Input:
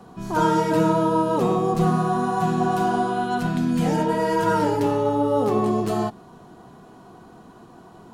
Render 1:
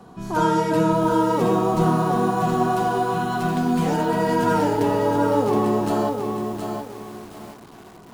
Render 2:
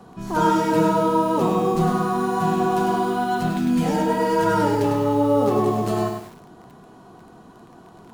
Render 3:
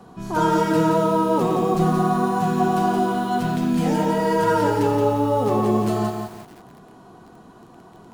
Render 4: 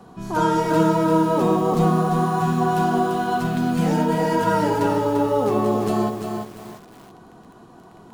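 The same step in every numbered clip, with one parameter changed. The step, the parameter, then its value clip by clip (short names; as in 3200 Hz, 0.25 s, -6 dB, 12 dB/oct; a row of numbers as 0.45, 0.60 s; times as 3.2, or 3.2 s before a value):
lo-fi delay, time: 0.72, 0.101, 0.173, 0.343 s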